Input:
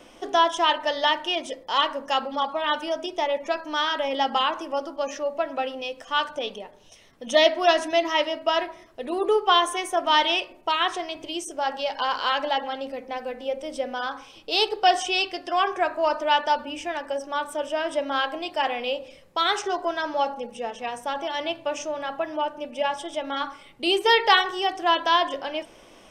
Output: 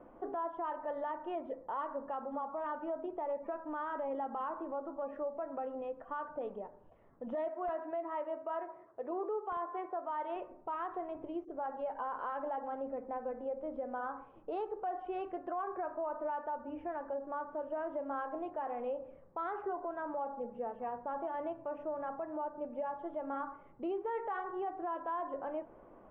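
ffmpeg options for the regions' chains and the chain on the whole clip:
ffmpeg -i in.wav -filter_complex "[0:a]asettb=1/sr,asplit=3[link_01][link_02][link_03];[link_01]atrim=end=7.484[link_04];[link_02]atrim=start=7.48:end=10.36,asetpts=PTS-STARTPTS,afade=type=in:duration=0.004:curve=qsin,afade=type=out:start_time=2.876:duration=0.004:curve=qsin,highpass=170,equalizer=frequency=220:width=1.8:gain=-9.5,aeval=exprs='(mod(2.24*val(0)+1,2)-1)/2.24':channel_layout=same[link_05];[link_03]atrim=start=10.356[link_06];[link_04][link_05]acrossfade=duration=0.004:curve1=hsin:curve2=qsin[link_07];[link_07][link_06]acrossfade=duration=0.004:curve1=qsin:curve2=hsin,lowpass=frequency=1300:width=0.5412,lowpass=frequency=1300:width=1.3066,acompressor=threshold=-30dB:ratio=2.5,alimiter=level_in=1dB:limit=-24dB:level=0:latency=1:release=16,volume=-1dB,volume=-5dB" out.wav

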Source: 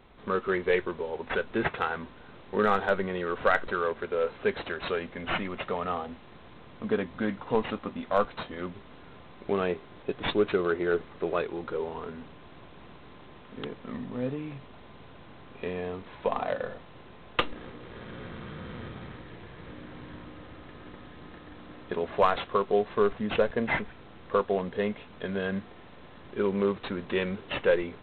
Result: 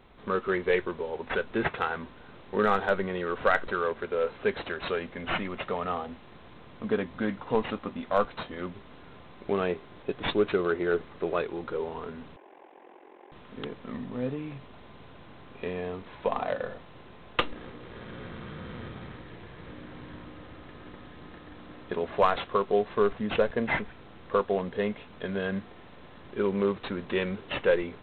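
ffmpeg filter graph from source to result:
ffmpeg -i in.wav -filter_complex "[0:a]asettb=1/sr,asplit=3[link_01][link_02][link_03];[link_01]atrim=end=12.364[link_04];[link_02]atrim=start=12.36:end=13.32,asetpts=PTS-STARTPTS,afade=type=in:duration=0.004:curve=qsin,afade=type=out:start_time=0.956:duration=0.004:curve=qsin,aeval=exprs='val(0)*sin(2*PI*22*n/s)':channel_layout=same,highpass=frequency=320:width=0.5412,highpass=frequency=320:width=1.3066,equalizer=frequency=360:width_type=q:width=4:gain=7,equalizer=frequency=540:width_type=q:width=4:gain=3,equalizer=frequency=820:width_type=q:width=4:gain=9,equalizer=frequency=1300:width_type=q:width=4:gain=-8,lowpass=frequency=2500:width=0.5412,lowpass=frequency=2500:width=1.3066[link_05];[link_03]atrim=start=13.316[link_06];[link_04][link_05]acrossfade=duration=0.004:curve1=hsin:curve2=qsin[link_07];[link_07][link_06]acrossfade=duration=0.004:curve1=qsin:curve2=hsin" out.wav

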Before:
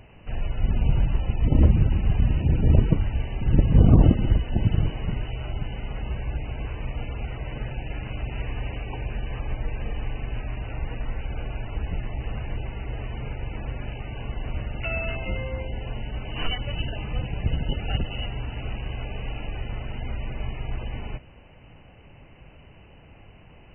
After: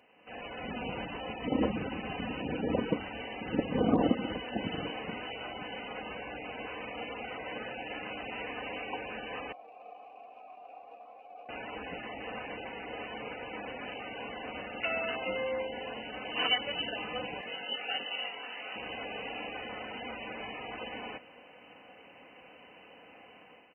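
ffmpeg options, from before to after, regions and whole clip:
ffmpeg -i in.wav -filter_complex "[0:a]asettb=1/sr,asplit=3[link_01][link_02][link_03];[link_01]atrim=end=9.524[link_04];[link_02]atrim=start=9.52:end=11.49,asetpts=PTS-STARTPTS,afade=type=in:duration=0.004:curve=qsin,afade=type=out:start_time=1.966:duration=0.004:curve=qsin,equalizer=frequency=1500:width_type=o:width=0.27:gain=-11.5,adynamicsmooth=sensitivity=6.5:basefreq=1200,asplit=3[link_05][link_06][link_07];[link_05]bandpass=frequency=730:width_type=q:width=8,volume=0dB[link_08];[link_06]bandpass=frequency=1090:width_type=q:width=8,volume=-6dB[link_09];[link_07]bandpass=frequency=2440:width_type=q:width=8,volume=-9dB[link_10];[link_08][link_09][link_10]amix=inputs=3:normalize=0[link_11];[link_03]atrim=start=11.486[link_12];[link_04][link_11]acrossfade=duration=0.004:curve1=hsin:curve2=qsin[link_13];[link_13][link_12]acrossfade=duration=0.004:curve1=qsin:curve2=hsin,asettb=1/sr,asplit=3[link_14][link_15][link_16];[link_14]atrim=end=17.414[link_17];[link_15]atrim=start=17.41:end=18.76,asetpts=PTS-STARTPTS,afade=type=in:duration=0.004:curve=qsin,afade=type=out:start_time=1.346:duration=0.004:curve=qsin,highpass=frequency=1100:poles=1,acompressor=mode=upward:threshold=-48dB:ratio=2.5:attack=3.2:release=140:knee=2.83:detection=peak,asplit=2[link_18][link_19];[link_19]adelay=21,volume=-4dB[link_20];[link_18][link_20]amix=inputs=2:normalize=0,atrim=end_sample=59535[link_21];[link_16]atrim=start=18.756[link_22];[link_17][link_21]acrossfade=duration=0.004:curve1=hsin:curve2=qsin[link_23];[link_23][link_22]acrossfade=duration=0.004:curve1=qsin:curve2=hsin,highpass=370,dynaudnorm=framelen=130:gausssize=5:maxgain=9.5dB,aecho=1:1:4:0.49,volume=-8.5dB" out.wav

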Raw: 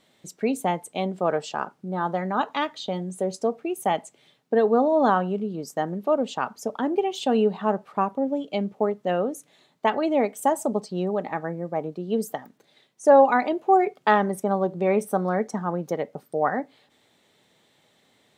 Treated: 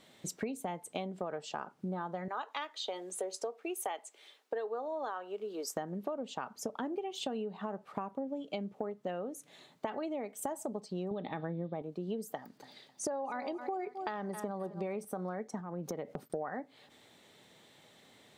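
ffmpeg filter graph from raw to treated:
ffmpeg -i in.wav -filter_complex "[0:a]asettb=1/sr,asplit=3[link_01][link_02][link_03];[link_01]atrim=end=2.284[link_04];[link_02]atrim=start=2.28:end=5.76,asetpts=PTS-STARTPTS,afade=type=in:duration=0.004:curve=qsin,afade=type=out:start_time=3.476:duration=0.004:curve=qsin,highpass=frequency=400:width=0.5412,highpass=frequency=400:width=1.3066,equalizer=frequency=620:width_type=o:width=0.95:gain=-4.5[link_05];[link_03]atrim=start=5.756[link_06];[link_04][link_05]acrossfade=duration=0.004:curve1=hsin:curve2=qsin[link_07];[link_07][link_06]acrossfade=duration=0.004:curve1=qsin:curve2=hsin,asettb=1/sr,asplit=3[link_08][link_09][link_10];[link_08]atrim=end=11.114[link_11];[link_09]atrim=start=11.11:end=11.82,asetpts=PTS-STARTPTS,afade=type=in:duration=0.004:curve=qsin,afade=type=out:start_time=0.706:duration=0.004:curve=qsin,lowpass=frequency=3600:width_type=q:width=12,lowshelf=frequency=460:gain=11[link_12];[link_10]atrim=start=11.816[link_13];[link_11][link_12]acrossfade=duration=0.004:curve1=hsin:curve2=qsin[link_14];[link_14][link_13]acrossfade=duration=0.004:curve1=qsin:curve2=hsin,asettb=1/sr,asplit=3[link_15][link_16][link_17];[link_15]atrim=end=12.364[link_18];[link_16]atrim=start=12.36:end=15.05,asetpts=PTS-STARTPTS,afade=type=in:duration=0.004:curve=qsin,afade=type=out:start_time=2.686:duration=0.004:curve=qsin,equalizer=frequency=4700:width=6.1:gain=11,aecho=1:1:264|528:0.126|0.0352,atrim=end_sample=118629[link_19];[link_17]atrim=start=15.046[link_20];[link_18][link_19]acrossfade=duration=0.004:curve1=hsin:curve2=qsin[link_21];[link_21][link_20]acrossfade=duration=0.004:curve1=qsin:curve2=hsin,asettb=1/sr,asplit=3[link_22][link_23][link_24];[link_22]atrim=end=15.604[link_25];[link_23]atrim=start=15.6:end=16.3,asetpts=PTS-STARTPTS,afade=type=in:duration=0.004:curve=qsin,afade=type=out:start_time=0.696:duration=0.004:curve=qsin,agate=range=-33dB:threshold=-51dB:ratio=3:release=100:detection=peak,lowshelf=frequency=470:gain=4.5,acompressor=threshold=-36dB:ratio=3:attack=3.2:release=140:knee=1:detection=peak[link_26];[link_24]atrim=start=16.296[link_27];[link_25][link_26]acrossfade=duration=0.004:curve1=hsin:curve2=qsin[link_28];[link_28][link_27]acrossfade=duration=0.004:curve1=qsin:curve2=hsin,alimiter=limit=-14dB:level=0:latency=1:release=30,acompressor=threshold=-36dB:ratio=16,volume=2dB" out.wav

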